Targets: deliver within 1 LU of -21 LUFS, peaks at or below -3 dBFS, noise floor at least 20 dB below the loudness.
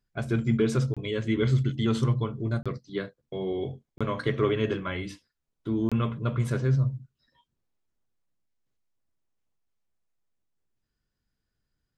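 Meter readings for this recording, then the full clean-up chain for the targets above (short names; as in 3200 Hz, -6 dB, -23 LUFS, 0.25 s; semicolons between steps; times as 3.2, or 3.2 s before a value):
dropouts 4; longest dropout 26 ms; loudness -28.0 LUFS; peak -12.5 dBFS; loudness target -21.0 LUFS
-> interpolate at 0.94/2.63/3.98/5.89, 26 ms; gain +7 dB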